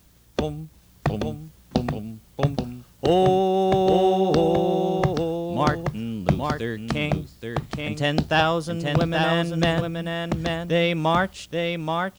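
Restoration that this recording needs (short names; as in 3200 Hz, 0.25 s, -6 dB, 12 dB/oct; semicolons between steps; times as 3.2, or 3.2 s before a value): de-click; inverse comb 0.828 s -4.5 dB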